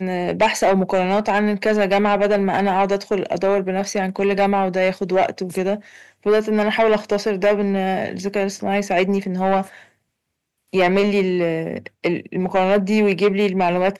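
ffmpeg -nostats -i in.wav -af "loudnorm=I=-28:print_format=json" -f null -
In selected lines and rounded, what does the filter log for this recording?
"input_i" : "-19.4",
"input_tp" : "-7.5",
"input_lra" : "2.4",
"input_thresh" : "-29.5",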